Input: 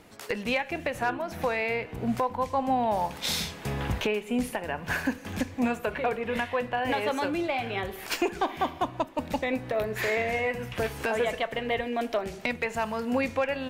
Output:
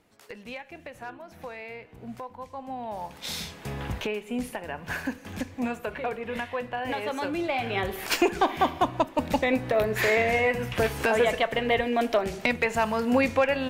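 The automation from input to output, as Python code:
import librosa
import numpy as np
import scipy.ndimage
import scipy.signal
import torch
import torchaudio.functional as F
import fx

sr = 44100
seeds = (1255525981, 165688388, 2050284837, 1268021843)

y = fx.gain(x, sr, db=fx.line((2.63, -11.5), (3.52, -3.0), (7.08, -3.0), (7.91, 4.5)))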